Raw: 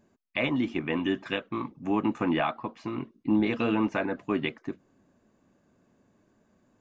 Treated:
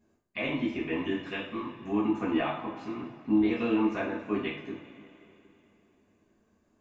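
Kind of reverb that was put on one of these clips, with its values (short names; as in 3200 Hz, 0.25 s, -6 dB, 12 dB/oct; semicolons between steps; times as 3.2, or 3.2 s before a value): two-slope reverb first 0.44 s, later 3 s, from -18 dB, DRR -6 dB; gain -10 dB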